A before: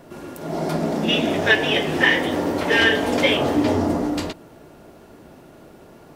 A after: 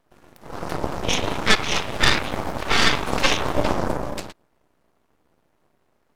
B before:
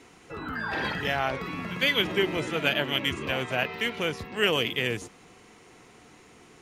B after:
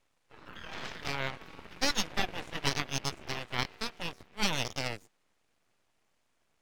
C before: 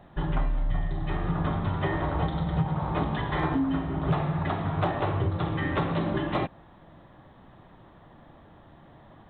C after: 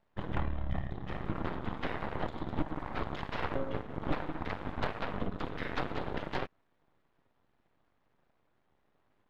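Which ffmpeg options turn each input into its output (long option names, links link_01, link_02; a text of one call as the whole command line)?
ffmpeg -i in.wav -af "aeval=exprs='0.708*(cos(1*acos(clip(val(0)/0.708,-1,1)))-cos(1*PI/2))+0.126*(cos(3*acos(clip(val(0)/0.708,-1,1)))-cos(3*PI/2))+0.316*(cos(4*acos(clip(val(0)/0.708,-1,1)))-cos(4*PI/2))+0.0355*(cos(7*acos(clip(val(0)/0.708,-1,1)))-cos(7*PI/2))+0.0251*(cos(8*acos(clip(val(0)/0.708,-1,1)))-cos(8*PI/2))':channel_layout=same,aeval=exprs='abs(val(0))':channel_layout=same,volume=-2dB" out.wav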